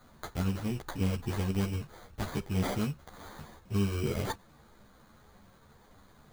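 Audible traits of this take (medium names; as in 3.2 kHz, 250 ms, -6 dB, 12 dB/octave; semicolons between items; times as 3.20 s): aliases and images of a low sample rate 2.7 kHz, jitter 0%; a shimmering, thickened sound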